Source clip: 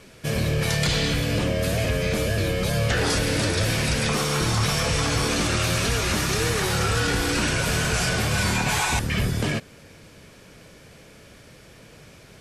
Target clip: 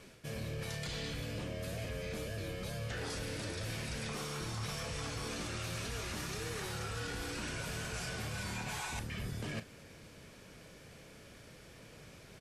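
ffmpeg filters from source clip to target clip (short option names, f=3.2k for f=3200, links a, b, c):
-filter_complex "[0:a]areverse,acompressor=threshold=-31dB:ratio=6,areverse,asplit=2[a][b];[b]adelay=36,volume=-13dB[c];[a][c]amix=inputs=2:normalize=0,volume=-7dB"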